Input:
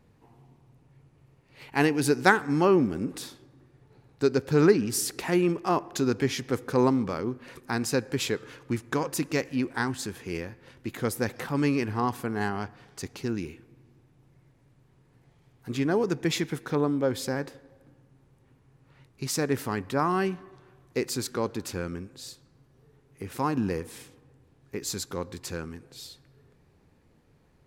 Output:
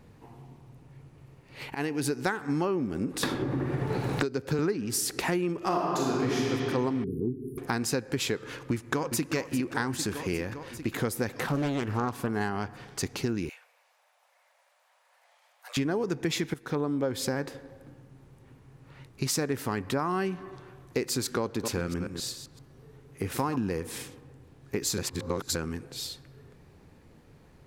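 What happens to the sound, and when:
1.75–2.53 fade in, from -19 dB
3.23–4.59 three-band squash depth 100%
5.57–6.46 reverb throw, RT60 2.5 s, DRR -6.5 dB
7.04–7.58 brick-wall FIR band-stop 460–9300 Hz
8.71–9.33 echo throw 0.4 s, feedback 65%, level -10 dB
11.43–12.29 Doppler distortion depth 0.56 ms
13.49–15.77 steep high-pass 560 Hz 72 dB/oct
16.54–17.07 fade in, from -14 dB
21.42–23.56 reverse delay 0.13 s, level -9.5 dB
24.98–25.55 reverse
whole clip: compressor 6:1, threshold -33 dBFS; gain +7 dB

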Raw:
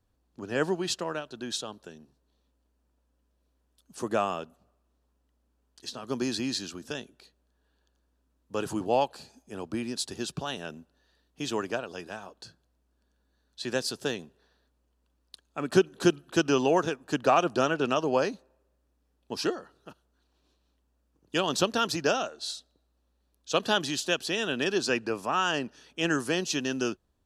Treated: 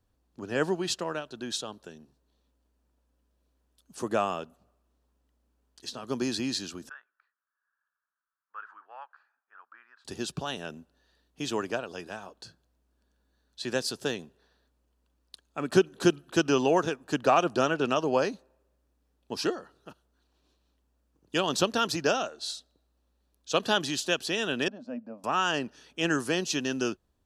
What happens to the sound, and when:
6.89–10.05 Butterworth band-pass 1400 Hz, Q 2.6
24.68–25.24 double band-pass 380 Hz, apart 1.3 oct

